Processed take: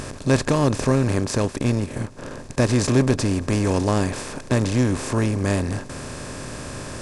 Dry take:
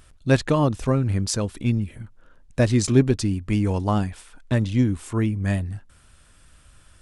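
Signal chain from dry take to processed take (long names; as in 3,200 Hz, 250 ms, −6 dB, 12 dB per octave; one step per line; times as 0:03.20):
compressor on every frequency bin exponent 0.4
0:01.15–0:02.69: transient designer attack 0 dB, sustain −8 dB
level −3.5 dB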